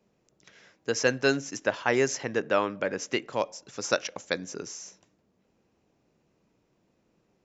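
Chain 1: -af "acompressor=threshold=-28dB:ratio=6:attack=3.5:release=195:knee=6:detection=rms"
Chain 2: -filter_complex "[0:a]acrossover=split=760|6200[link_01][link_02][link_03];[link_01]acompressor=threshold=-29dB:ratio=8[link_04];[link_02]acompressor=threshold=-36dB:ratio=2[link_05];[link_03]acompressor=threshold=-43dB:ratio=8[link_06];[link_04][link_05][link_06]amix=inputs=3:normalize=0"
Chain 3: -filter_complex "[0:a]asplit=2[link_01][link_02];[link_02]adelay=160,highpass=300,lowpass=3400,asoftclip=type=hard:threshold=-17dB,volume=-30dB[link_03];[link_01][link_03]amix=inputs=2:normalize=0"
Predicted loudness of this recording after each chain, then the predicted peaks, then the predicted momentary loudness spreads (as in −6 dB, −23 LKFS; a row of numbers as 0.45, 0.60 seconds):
−37.0, −34.0, −29.0 LKFS; −16.5, −12.5, −7.5 dBFS; 7, 7, 13 LU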